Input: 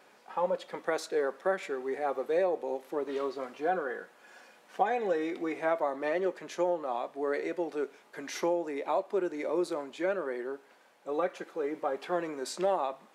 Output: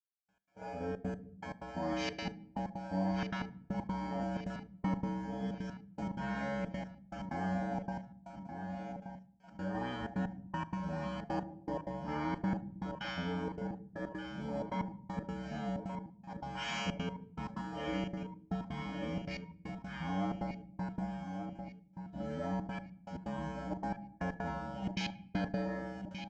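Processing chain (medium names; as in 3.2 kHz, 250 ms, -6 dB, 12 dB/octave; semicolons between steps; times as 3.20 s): gate -52 dBFS, range -22 dB; speed mistake 15 ips tape played at 7.5 ips; peaking EQ 3.8 kHz -12 dB 0.28 oct; comb 1.3 ms, depth 97%; harmonic-percussive split percussive -16 dB; bass shelf 150 Hz +3.5 dB; in parallel at +3 dB: level held to a coarse grid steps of 16 dB; on the sum: feedback comb 63 Hz, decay 0.97 s, harmonics odd, mix 100%; trance gate "...x.xxxxx.x" 158 bpm -60 dB; feedback delay 1176 ms, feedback 41%, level -13.5 dB; on a send at -16.5 dB: reverberation RT60 0.55 s, pre-delay 7 ms; on the sum: spectrum-flattening compressor 2:1; trim +4 dB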